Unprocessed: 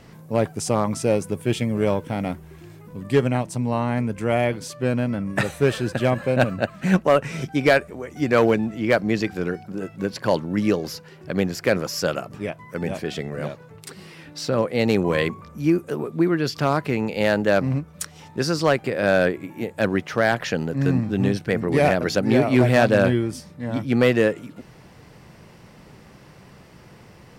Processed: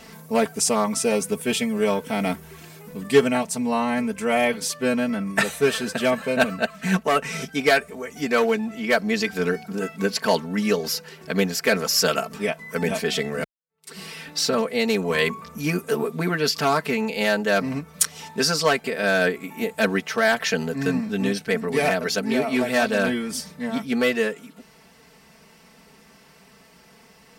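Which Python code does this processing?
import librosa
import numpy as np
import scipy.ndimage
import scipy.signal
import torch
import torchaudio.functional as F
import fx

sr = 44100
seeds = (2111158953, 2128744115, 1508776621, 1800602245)

y = fx.edit(x, sr, fx.fade_in_span(start_s=13.44, length_s=0.51, curve='exp'), tone=tone)
y = y + 0.95 * np.pad(y, (int(4.5 * sr / 1000.0), 0))[:len(y)]
y = fx.rider(y, sr, range_db=4, speed_s=0.5)
y = fx.tilt_eq(y, sr, slope=2.0)
y = y * librosa.db_to_amplitude(-1.5)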